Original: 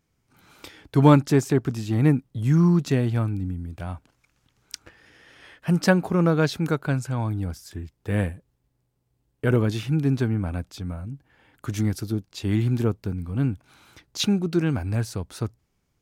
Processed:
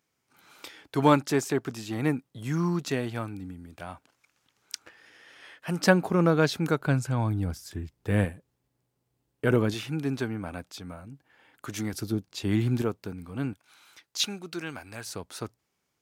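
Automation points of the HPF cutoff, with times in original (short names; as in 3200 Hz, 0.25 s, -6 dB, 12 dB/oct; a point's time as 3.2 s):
HPF 6 dB/oct
520 Hz
from 5.79 s 190 Hz
from 6.81 s 52 Hz
from 8.25 s 190 Hz
from 9.74 s 460 Hz
from 11.93 s 150 Hz
from 12.82 s 430 Hz
from 13.53 s 1500 Hz
from 15.06 s 490 Hz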